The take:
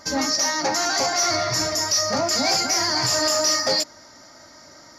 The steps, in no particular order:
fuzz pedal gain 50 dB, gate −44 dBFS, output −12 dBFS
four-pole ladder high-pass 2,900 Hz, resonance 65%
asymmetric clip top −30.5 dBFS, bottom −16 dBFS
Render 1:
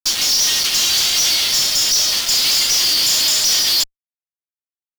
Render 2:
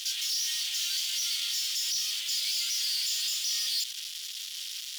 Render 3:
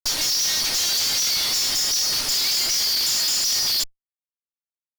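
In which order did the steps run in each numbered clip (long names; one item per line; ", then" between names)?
asymmetric clip, then four-pole ladder high-pass, then fuzz pedal
fuzz pedal, then asymmetric clip, then four-pole ladder high-pass
four-pole ladder high-pass, then fuzz pedal, then asymmetric clip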